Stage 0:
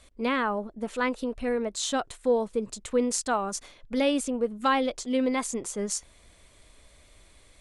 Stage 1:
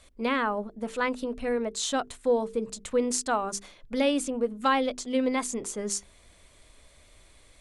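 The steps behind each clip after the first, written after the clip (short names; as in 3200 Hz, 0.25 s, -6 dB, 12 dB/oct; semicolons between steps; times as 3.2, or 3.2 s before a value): notches 50/100/150/200/250/300/350/400/450 Hz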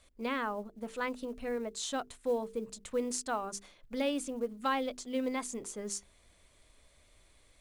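short-mantissa float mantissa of 4-bit; gain -7.5 dB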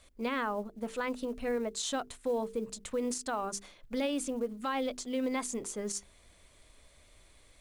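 limiter -28 dBFS, peak gain reduction 10 dB; gain +3.5 dB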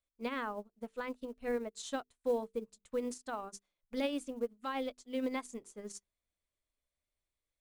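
upward expander 2.5:1, over -50 dBFS; gain +1 dB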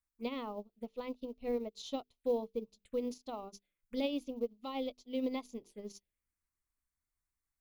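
envelope phaser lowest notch 540 Hz, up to 1600 Hz, full sweep at -42.5 dBFS; gain +1 dB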